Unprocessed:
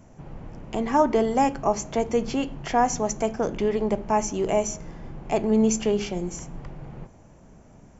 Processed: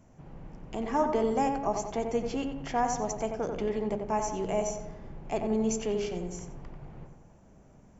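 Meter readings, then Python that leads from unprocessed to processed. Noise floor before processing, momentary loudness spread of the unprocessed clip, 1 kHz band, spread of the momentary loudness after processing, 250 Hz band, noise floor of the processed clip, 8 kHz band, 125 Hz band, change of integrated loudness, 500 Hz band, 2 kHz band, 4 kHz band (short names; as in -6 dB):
-51 dBFS, 20 LU, -6.0 dB, 19 LU, -7.0 dB, -57 dBFS, n/a, -6.0 dB, -6.5 dB, -6.0 dB, -7.0 dB, -7.0 dB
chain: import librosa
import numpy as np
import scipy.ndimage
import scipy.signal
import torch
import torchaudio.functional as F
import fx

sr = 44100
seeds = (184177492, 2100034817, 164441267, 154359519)

y = fx.echo_filtered(x, sr, ms=90, feedback_pct=54, hz=2100.0, wet_db=-5.0)
y = y * librosa.db_to_amplitude(-7.5)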